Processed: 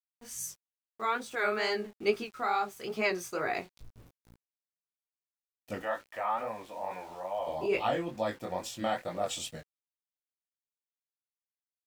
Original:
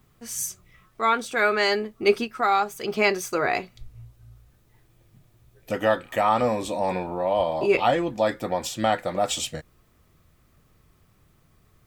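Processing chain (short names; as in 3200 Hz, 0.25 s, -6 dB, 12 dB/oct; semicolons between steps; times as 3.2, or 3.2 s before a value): 5.82–7.47 three-band isolator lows -13 dB, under 590 Hz, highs -18 dB, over 2700 Hz; sample gate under -42.5 dBFS; chorus 2.3 Hz, delay 17.5 ms, depth 6.8 ms; gain -6 dB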